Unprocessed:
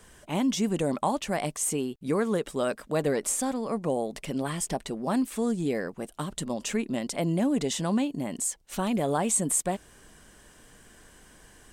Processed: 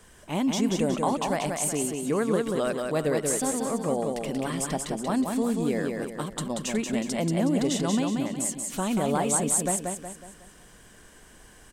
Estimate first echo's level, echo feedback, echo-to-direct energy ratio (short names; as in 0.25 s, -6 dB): -4.0 dB, 43%, -3.0 dB